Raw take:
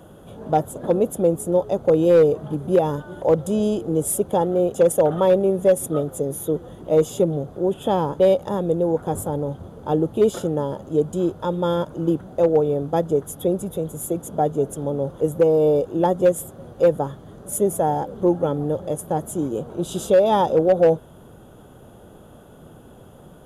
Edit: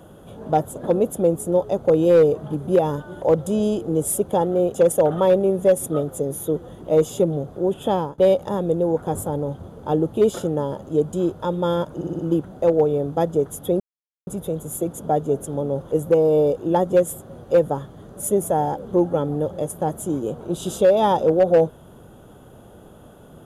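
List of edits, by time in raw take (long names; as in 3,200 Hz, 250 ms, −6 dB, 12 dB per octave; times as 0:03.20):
0:07.86–0:08.18: fade out equal-power, to −21.5 dB
0:11.95: stutter 0.06 s, 5 plays
0:13.56: splice in silence 0.47 s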